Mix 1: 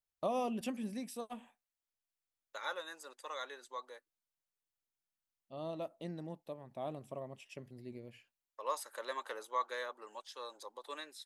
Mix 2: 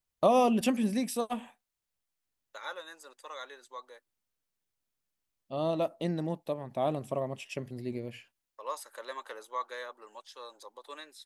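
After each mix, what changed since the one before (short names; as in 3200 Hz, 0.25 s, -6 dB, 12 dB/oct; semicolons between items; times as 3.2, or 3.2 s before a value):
first voice +11.5 dB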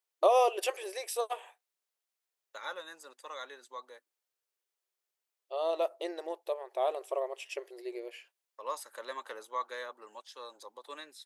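first voice: add brick-wall FIR high-pass 340 Hz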